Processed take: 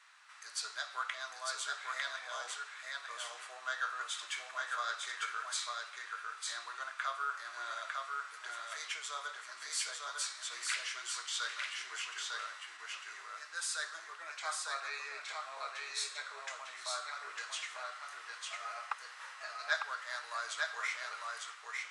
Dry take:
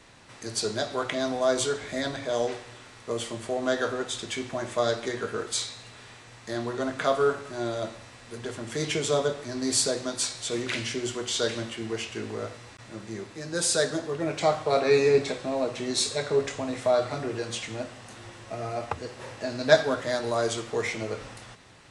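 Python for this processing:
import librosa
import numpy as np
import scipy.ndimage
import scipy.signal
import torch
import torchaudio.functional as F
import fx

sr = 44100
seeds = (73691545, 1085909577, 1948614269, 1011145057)

p1 = fx.rider(x, sr, range_db=3, speed_s=0.5)
p2 = fx.ladder_highpass(p1, sr, hz=1100.0, resonance_pct=50)
p3 = p2 + fx.echo_single(p2, sr, ms=901, db=-3.0, dry=0)
y = F.gain(torch.from_numpy(p3), -1.0).numpy()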